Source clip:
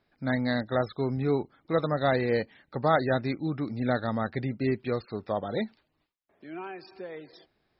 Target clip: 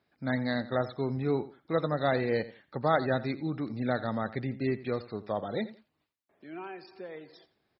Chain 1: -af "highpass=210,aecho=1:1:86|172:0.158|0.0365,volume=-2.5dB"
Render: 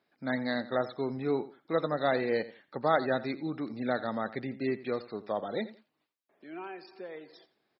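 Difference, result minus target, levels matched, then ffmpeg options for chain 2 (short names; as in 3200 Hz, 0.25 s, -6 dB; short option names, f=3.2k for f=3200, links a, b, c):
125 Hz band -7.0 dB
-af "highpass=74,aecho=1:1:86|172:0.158|0.0365,volume=-2.5dB"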